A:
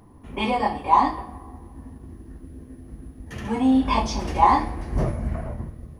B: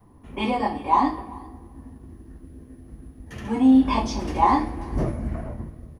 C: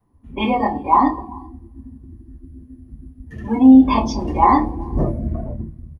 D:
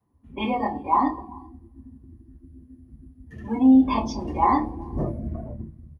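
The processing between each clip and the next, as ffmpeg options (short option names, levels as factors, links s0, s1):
-af "adynamicequalizer=threshold=0.0112:dfrequency=290:dqfactor=1.9:tfrequency=290:tqfactor=1.9:attack=5:release=100:ratio=0.375:range=3.5:mode=boostabove:tftype=bell,aecho=1:1:388:0.0631,volume=0.75"
-filter_complex "[0:a]afftdn=nr=17:nf=-34,asplit=2[s0][s1];[s1]adelay=27,volume=0.282[s2];[s0][s2]amix=inputs=2:normalize=0,volume=1.78"
-af "highpass=52,volume=0.473"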